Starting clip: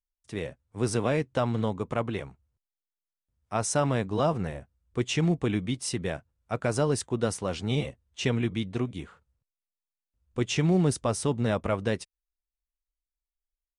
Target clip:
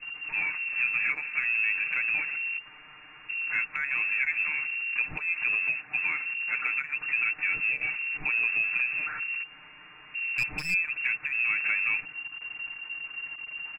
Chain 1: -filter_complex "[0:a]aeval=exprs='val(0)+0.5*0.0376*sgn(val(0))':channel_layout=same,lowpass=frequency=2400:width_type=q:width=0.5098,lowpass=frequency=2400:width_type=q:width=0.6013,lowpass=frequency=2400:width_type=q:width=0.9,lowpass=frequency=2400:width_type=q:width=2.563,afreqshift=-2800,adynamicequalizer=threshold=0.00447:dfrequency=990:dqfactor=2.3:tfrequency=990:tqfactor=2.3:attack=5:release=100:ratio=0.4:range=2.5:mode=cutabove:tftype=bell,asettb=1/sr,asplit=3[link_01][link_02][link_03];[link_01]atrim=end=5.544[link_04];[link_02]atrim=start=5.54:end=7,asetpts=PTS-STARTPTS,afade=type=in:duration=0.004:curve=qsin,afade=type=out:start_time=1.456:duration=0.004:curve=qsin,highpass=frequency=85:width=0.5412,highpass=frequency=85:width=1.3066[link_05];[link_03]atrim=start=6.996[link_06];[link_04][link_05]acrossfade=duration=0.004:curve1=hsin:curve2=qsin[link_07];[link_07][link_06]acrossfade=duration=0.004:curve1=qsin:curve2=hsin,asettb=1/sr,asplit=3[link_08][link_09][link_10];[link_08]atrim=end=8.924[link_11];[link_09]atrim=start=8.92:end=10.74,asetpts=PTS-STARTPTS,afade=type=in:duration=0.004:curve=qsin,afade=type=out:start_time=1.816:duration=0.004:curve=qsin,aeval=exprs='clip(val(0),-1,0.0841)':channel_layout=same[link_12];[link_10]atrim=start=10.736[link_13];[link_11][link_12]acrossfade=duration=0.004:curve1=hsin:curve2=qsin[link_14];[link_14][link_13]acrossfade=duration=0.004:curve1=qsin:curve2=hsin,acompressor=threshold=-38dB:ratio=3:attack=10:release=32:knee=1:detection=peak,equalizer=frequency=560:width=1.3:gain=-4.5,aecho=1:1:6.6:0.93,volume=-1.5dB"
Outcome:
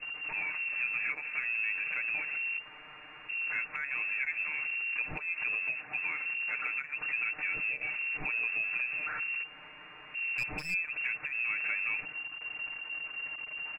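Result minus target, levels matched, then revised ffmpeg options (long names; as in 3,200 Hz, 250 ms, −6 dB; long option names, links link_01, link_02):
500 Hz band +6.5 dB; downward compressor: peak gain reduction +6.5 dB
-filter_complex "[0:a]aeval=exprs='val(0)+0.5*0.0376*sgn(val(0))':channel_layout=same,lowpass=frequency=2400:width_type=q:width=0.5098,lowpass=frequency=2400:width_type=q:width=0.6013,lowpass=frequency=2400:width_type=q:width=0.9,lowpass=frequency=2400:width_type=q:width=2.563,afreqshift=-2800,adynamicequalizer=threshold=0.00447:dfrequency=990:dqfactor=2.3:tfrequency=990:tqfactor=2.3:attack=5:release=100:ratio=0.4:range=2.5:mode=cutabove:tftype=bell,asettb=1/sr,asplit=3[link_01][link_02][link_03];[link_01]atrim=end=5.544[link_04];[link_02]atrim=start=5.54:end=7,asetpts=PTS-STARTPTS,afade=type=in:duration=0.004:curve=qsin,afade=type=out:start_time=1.456:duration=0.004:curve=qsin,highpass=frequency=85:width=0.5412,highpass=frequency=85:width=1.3066[link_05];[link_03]atrim=start=6.996[link_06];[link_04][link_05]acrossfade=duration=0.004:curve1=hsin:curve2=qsin[link_07];[link_07][link_06]acrossfade=duration=0.004:curve1=qsin:curve2=hsin,asettb=1/sr,asplit=3[link_08][link_09][link_10];[link_08]atrim=end=8.924[link_11];[link_09]atrim=start=8.92:end=10.74,asetpts=PTS-STARTPTS,afade=type=in:duration=0.004:curve=qsin,afade=type=out:start_time=1.816:duration=0.004:curve=qsin,aeval=exprs='clip(val(0),-1,0.0841)':channel_layout=same[link_12];[link_10]atrim=start=10.736[link_13];[link_11][link_12]acrossfade=duration=0.004:curve1=hsin:curve2=qsin[link_14];[link_14][link_13]acrossfade=duration=0.004:curve1=qsin:curve2=hsin,acompressor=threshold=-28.5dB:ratio=3:attack=10:release=32:knee=1:detection=peak,equalizer=frequency=560:width=1.3:gain=-12,aecho=1:1:6.6:0.93,volume=-1.5dB"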